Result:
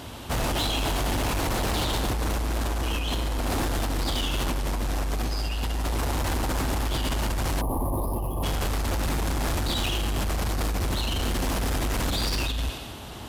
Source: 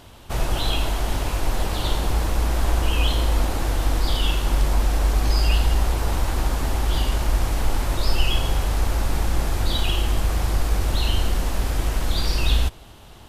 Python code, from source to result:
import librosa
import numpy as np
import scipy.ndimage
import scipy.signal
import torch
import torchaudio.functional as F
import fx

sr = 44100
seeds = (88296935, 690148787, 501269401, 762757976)

y = scipy.signal.sosfilt(scipy.signal.butter(2, 56.0, 'highpass', fs=sr, output='sos'), x)
y = fx.peak_eq(y, sr, hz=260.0, db=4.5, octaves=0.43)
y = fx.echo_thinned(y, sr, ms=91, feedback_pct=54, hz=420.0, wet_db=-15.5)
y = fx.over_compress(y, sr, threshold_db=-26.0, ratio=-1.0)
y = 10.0 ** (-27.5 / 20.0) * np.tanh(y / 10.0 ** (-27.5 / 20.0))
y = fx.spec_box(y, sr, start_s=7.61, length_s=0.83, low_hz=1200.0, high_hz=9600.0, gain_db=-28)
y = F.gain(torch.from_numpy(y), 5.0).numpy()